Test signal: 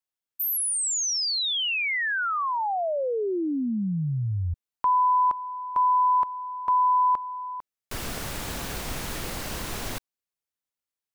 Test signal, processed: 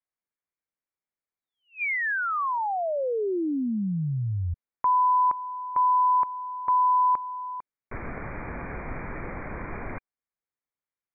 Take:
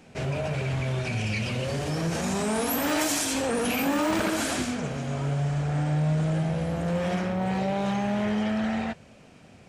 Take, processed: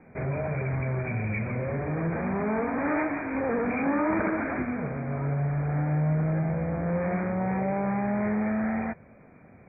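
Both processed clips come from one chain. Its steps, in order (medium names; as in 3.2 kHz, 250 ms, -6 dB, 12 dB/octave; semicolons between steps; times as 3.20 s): Chebyshev low-pass 2.4 kHz, order 10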